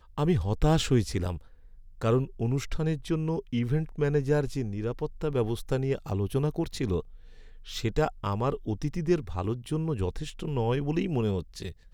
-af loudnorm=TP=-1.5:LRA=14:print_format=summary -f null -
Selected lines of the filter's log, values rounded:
Input Integrated:    -29.6 LUFS
Input True Peak:      -9.6 dBTP
Input LRA:             2.3 LU
Input Threshold:     -39.9 LUFS